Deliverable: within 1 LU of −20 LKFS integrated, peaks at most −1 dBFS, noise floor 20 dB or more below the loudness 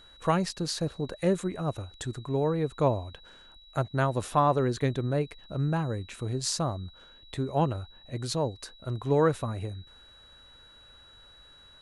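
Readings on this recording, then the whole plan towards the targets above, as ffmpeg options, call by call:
interfering tone 3,900 Hz; level of the tone −53 dBFS; integrated loudness −29.5 LKFS; sample peak −11.5 dBFS; target loudness −20.0 LKFS
→ -af "bandreject=frequency=3900:width=30"
-af "volume=9.5dB"

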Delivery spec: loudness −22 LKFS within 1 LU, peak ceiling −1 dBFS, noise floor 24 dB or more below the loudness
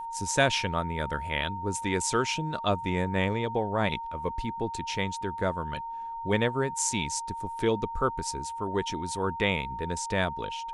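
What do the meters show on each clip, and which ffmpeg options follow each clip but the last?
interfering tone 920 Hz; level of the tone −34 dBFS; integrated loudness −29.5 LKFS; sample peak −9.5 dBFS; target loudness −22.0 LKFS
→ -af "bandreject=frequency=920:width=30"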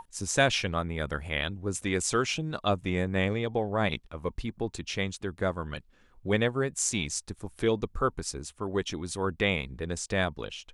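interfering tone none found; integrated loudness −30.0 LKFS; sample peak −10.0 dBFS; target loudness −22.0 LKFS
→ -af "volume=8dB"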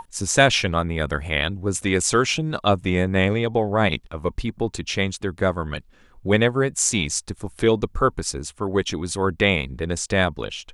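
integrated loudness −22.0 LKFS; sample peak −2.0 dBFS; background noise floor −53 dBFS

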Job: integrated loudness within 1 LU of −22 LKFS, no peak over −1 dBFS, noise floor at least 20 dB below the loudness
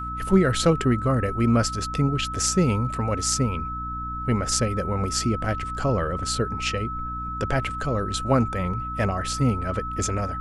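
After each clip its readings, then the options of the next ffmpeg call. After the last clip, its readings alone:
mains hum 60 Hz; hum harmonics up to 300 Hz; level of the hum −32 dBFS; interfering tone 1,300 Hz; level of the tone −30 dBFS; integrated loudness −24.5 LKFS; sample peak −5.5 dBFS; target loudness −22.0 LKFS
→ -af "bandreject=frequency=60:width_type=h:width=4,bandreject=frequency=120:width_type=h:width=4,bandreject=frequency=180:width_type=h:width=4,bandreject=frequency=240:width_type=h:width=4,bandreject=frequency=300:width_type=h:width=4"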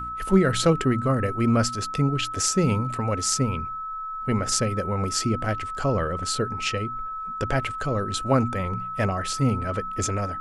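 mains hum none found; interfering tone 1,300 Hz; level of the tone −30 dBFS
→ -af "bandreject=frequency=1300:width=30"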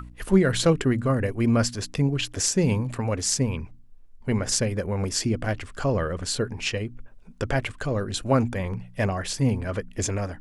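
interfering tone none found; integrated loudness −25.5 LKFS; sample peak −5.5 dBFS; target loudness −22.0 LKFS
→ -af "volume=3.5dB"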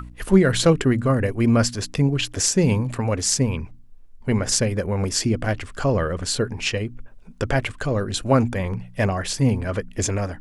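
integrated loudness −22.0 LKFS; sample peak −2.0 dBFS; background noise floor −44 dBFS

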